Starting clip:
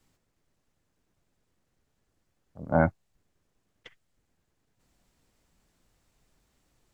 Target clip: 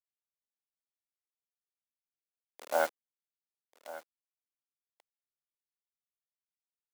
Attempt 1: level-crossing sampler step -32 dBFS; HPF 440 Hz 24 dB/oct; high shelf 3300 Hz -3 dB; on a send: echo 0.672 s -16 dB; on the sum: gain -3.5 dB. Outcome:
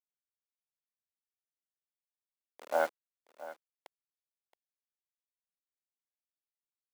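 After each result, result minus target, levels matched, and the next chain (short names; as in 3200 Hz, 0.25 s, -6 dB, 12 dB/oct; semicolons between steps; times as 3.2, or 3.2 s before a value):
echo 0.467 s early; 8000 Hz band -6.5 dB
level-crossing sampler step -32 dBFS; HPF 440 Hz 24 dB/oct; high shelf 3300 Hz -3 dB; on a send: echo 1.139 s -16 dB; on the sum: gain -3.5 dB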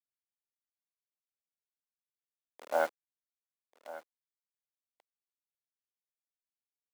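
8000 Hz band -6.5 dB
level-crossing sampler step -32 dBFS; HPF 440 Hz 24 dB/oct; high shelf 3300 Hz +5.5 dB; on a send: echo 1.139 s -16 dB; on the sum: gain -3.5 dB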